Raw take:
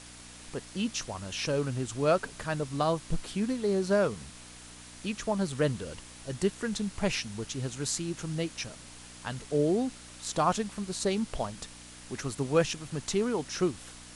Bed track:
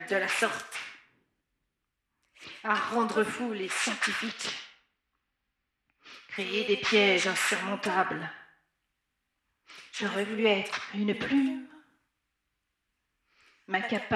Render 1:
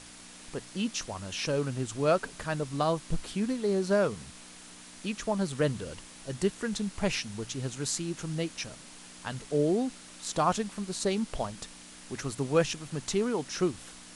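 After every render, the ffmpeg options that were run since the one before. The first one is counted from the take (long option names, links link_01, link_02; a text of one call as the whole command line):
ffmpeg -i in.wav -af "bandreject=frequency=60:width_type=h:width=4,bandreject=frequency=120:width_type=h:width=4" out.wav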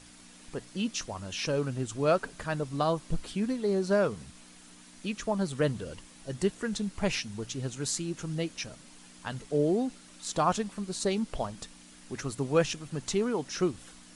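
ffmpeg -i in.wav -af "afftdn=noise_reduction=6:noise_floor=-49" out.wav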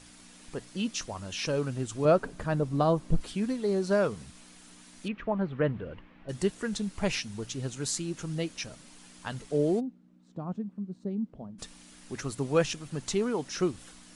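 ffmpeg -i in.wav -filter_complex "[0:a]asettb=1/sr,asplit=3[link_01][link_02][link_03];[link_01]atrim=end=2.054[link_04];[link_02]atrim=start=2.05:end=3.21,asetpts=PTS-STARTPTS,afade=type=in:duration=0.004:curve=qsin,afade=type=out:start_time=1.156:duration=0.004:curve=qsin,tiltshelf=frequency=1100:gain=5.5[link_05];[link_03]atrim=start=3.206[link_06];[link_04][link_05]acrossfade=duration=0.004:curve1=hsin:curve2=qsin[link_07];[link_07][link_06]acrossfade=duration=0.004:curve1=qsin:curve2=hsin,asettb=1/sr,asplit=3[link_08][link_09][link_10];[link_08]atrim=end=5.084[link_11];[link_09]atrim=start=5.08:end=6.29,asetpts=PTS-STARTPTS,afade=type=in:duration=0.004:curve=qsin,afade=type=out:start_time=1.206:duration=0.004:curve=qsin,lowpass=frequency=2500:width=0.5412,lowpass=frequency=2500:width=1.3066[link_12];[link_10]atrim=start=6.286[link_13];[link_11][link_12]acrossfade=duration=0.004:curve1=hsin:curve2=qsin[link_14];[link_14][link_13]acrossfade=duration=0.004:curve1=qsin:curve2=hsin,asplit=3[link_15][link_16][link_17];[link_15]afade=type=out:start_time=9.79:duration=0.02[link_18];[link_16]bandpass=frequency=200:width_type=q:width=1.9,afade=type=in:start_time=9.79:duration=0.02,afade=type=out:start_time=11.58:duration=0.02[link_19];[link_17]afade=type=in:start_time=11.58:duration=0.02[link_20];[link_18][link_19][link_20]amix=inputs=3:normalize=0" out.wav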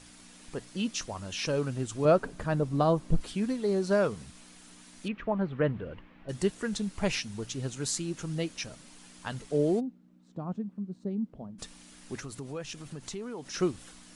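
ffmpeg -i in.wav -filter_complex "[0:a]asettb=1/sr,asplit=3[link_01][link_02][link_03];[link_01]atrim=end=12.194[link_04];[link_02]atrim=start=12.19:end=13.54,asetpts=PTS-STARTPTS,afade=type=in:duration=0.004:curve=qsin,afade=type=out:start_time=1.346:duration=0.004:curve=qsin,acompressor=threshold=-38dB:ratio=3:attack=3.2:release=140:knee=1:detection=peak[link_05];[link_03]atrim=start=13.536[link_06];[link_04][link_05]acrossfade=duration=0.004:curve1=hsin:curve2=qsin[link_07];[link_07][link_06]acrossfade=duration=0.004:curve1=qsin:curve2=hsin" out.wav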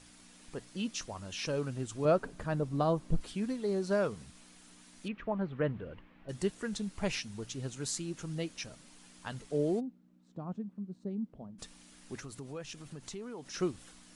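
ffmpeg -i in.wav -af "volume=-4.5dB" out.wav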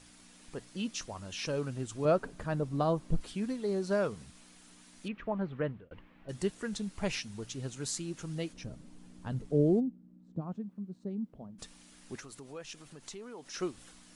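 ffmpeg -i in.wav -filter_complex "[0:a]asplit=3[link_01][link_02][link_03];[link_01]afade=type=out:start_time=8.52:duration=0.02[link_04];[link_02]tiltshelf=frequency=640:gain=9.5,afade=type=in:start_time=8.52:duration=0.02,afade=type=out:start_time=10.4:duration=0.02[link_05];[link_03]afade=type=in:start_time=10.4:duration=0.02[link_06];[link_04][link_05][link_06]amix=inputs=3:normalize=0,asettb=1/sr,asplit=3[link_07][link_08][link_09];[link_07]atrim=end=12.164[link_10];[link_08]atrim=start=12.16:end=13.77,asetpts=PTS-STARTPTS,afade=type=in:duration=0.004:curve=qsin,afade=type=out:start_time=1.606:duration=0.004:curve=qsin,equalizer=frequency=74:width_type=o:width=3:gain=-10.5[link_11];[link_09]atrim=start=13.766[link_12];[link_10][link_11]acrossfade=duration=0.004:curve1=hsin:curve2=qsin[link_13];[link_13][link_12]acrossfade=duration=0.004:curve1=qsin:curve2=hsin,asplit=2[link_14][link_15];[link_14]atrim=end=5.91,asetpts=PTS-STARTPTS,afade=type=out:start_time=5.45:duration=0.46:curve=qsin[link_16];[link_15]atrim=start=5.91,asetpts=PTS-STARTPTS,afade=type=in:duration=0.004:curve=hsin[link_17];[link_16][link_17]concat=n=2:v=0:a=1" out.wav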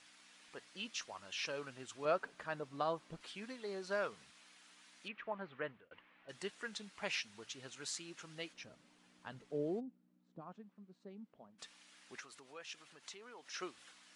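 ffmpeg -i in.wav -af "bandpass=frequency=2200:width_type=q:width=0.65:csg=0" out.wav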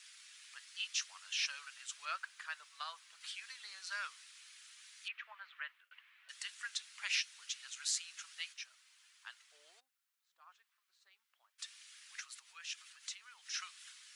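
ffmpeg -i in.wav -af "highpass=frequency=1300:width=0.5412,highpass=frequency=1300:width=1.3066,highshelf=frequency=2700:gain=9" out.wav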